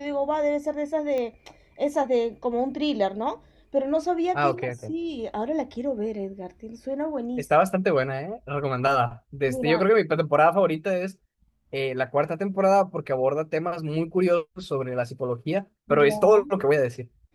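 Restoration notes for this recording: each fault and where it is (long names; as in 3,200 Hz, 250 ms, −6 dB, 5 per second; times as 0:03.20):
0:01.18: click −19 dBFS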